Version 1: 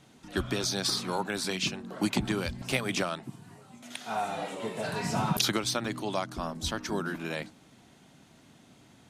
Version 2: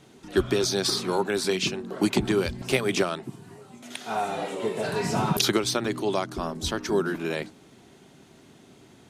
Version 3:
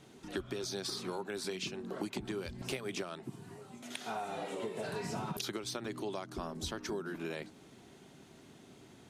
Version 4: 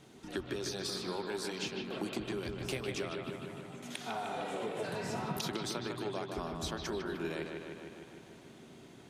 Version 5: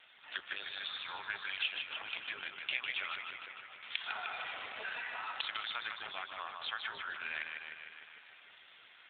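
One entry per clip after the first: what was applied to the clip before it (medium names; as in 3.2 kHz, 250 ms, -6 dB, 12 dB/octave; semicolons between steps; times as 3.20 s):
peaking EQ 390 Hz +9.5 dB 0.41 oct; trim +3 dB
compression 6:1, threshold -32 dBFS, peak gain reduction 14.5 dB; trim -4 dB
bucket-brigade echo 152 ms, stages 4096, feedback 70%, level -5 dB
Butterworth band-pass 2.9 kHz, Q 0.65; trim +9.5 dB; AMR-NB 7.4 kbps 8 kHz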